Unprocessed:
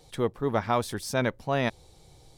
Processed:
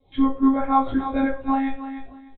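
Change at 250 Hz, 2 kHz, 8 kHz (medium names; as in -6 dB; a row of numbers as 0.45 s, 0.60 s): +12.5 dB, -1.5 dB, under -40 dB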